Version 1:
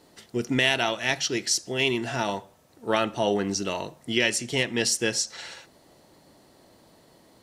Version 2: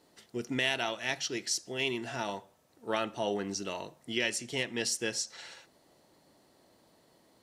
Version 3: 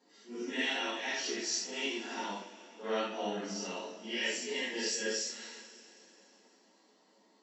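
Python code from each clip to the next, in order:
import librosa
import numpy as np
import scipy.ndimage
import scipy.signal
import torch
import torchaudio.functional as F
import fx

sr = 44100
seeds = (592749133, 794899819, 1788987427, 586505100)

y1 = fx.low_shelf(x, sr, hz=130.0, db=-5.5)
y1 = y1 * librosa.db_to_amplitude(-7.5)
y2 = fx.phase_scramble(y1, sr, seeds[0], window_ms=200)
y2 = fx.brickwall_bandpass(y2, sr, low_hz=180.0, high_hz=7900.0)
y2 = fx.rev_double_slope(y2, sr, seeds[1], early_s=0.24, late_s=3.4, knee_db=-21, drr_db=-4.5)
y2 = y2 * librosa.db_to_amplitude(-7.5)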